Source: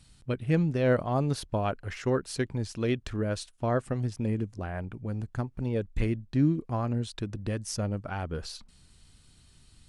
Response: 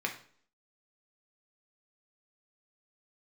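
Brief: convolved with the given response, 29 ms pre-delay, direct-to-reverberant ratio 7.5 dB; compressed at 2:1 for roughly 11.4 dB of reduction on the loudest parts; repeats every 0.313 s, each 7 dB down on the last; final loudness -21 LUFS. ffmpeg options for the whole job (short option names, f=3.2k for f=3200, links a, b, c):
-filter_complex "[0:a]acompressor=threshold=-41dB:ratio=2,aecho=1:1:313|626|939|1252|1565:0.447|0.201|0.0905|0.0407|0.0183,asplit=2[a][b];[1:a]atrim=start_sample=2205,adelay=29[c];[b][c]afir=irnorm=-1:irlink=0,volume=-13dB[d];[a][d]amix=inputs=2:normalize=0,volume=17dB"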